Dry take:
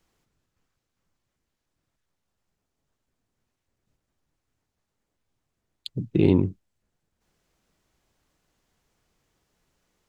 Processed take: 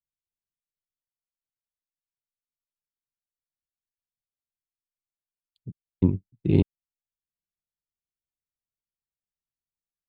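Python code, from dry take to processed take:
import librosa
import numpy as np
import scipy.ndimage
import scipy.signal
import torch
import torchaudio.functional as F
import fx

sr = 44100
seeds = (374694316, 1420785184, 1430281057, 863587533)

y = fx.block_reorder(x, sr, ms=301.0, group=2)
y = fx.bass_treble(y, sr, bass_db=9, treble_db=2)
y = fx.upward_expand(y, sr, threshold_db=-34.0, expansion=2.5)
y = y * librosa.db_to_amplitude(-3.5)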